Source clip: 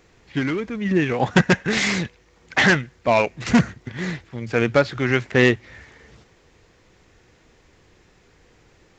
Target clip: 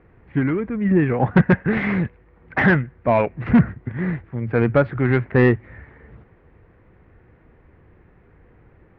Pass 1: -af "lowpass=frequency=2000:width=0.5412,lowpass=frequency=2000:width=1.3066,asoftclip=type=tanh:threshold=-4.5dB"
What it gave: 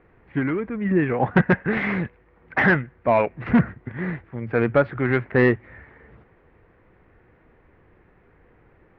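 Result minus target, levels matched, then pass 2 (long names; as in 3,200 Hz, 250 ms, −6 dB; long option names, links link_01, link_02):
125 Hz band −3.0 dB
-af "lowpass=frequency=2000:width=0.5412,lowpass=frequency=2000:width=1.3066,equalizer=frequency=77:width=0.33:gain=7,asoftclip=type=tanh:threshold=-4.5dB"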